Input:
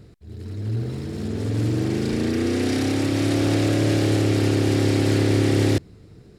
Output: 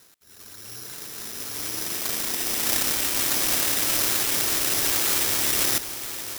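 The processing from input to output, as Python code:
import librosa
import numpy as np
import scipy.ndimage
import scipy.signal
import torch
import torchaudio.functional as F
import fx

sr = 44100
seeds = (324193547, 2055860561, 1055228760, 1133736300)

y = fx.weighting(x, sr, curve='ITU-R 468')
y = y + 10.0 ** (-10.0 / 20.0) * np.pad(y, (int(974 * sr / 1000.0), 0))[:len(y)]
y = (np.kron(y[::8], np.eye(8)[0]) * 8)[:len(y)]
y = F.gain(torch.from_numpy(y), -9.0).numpy()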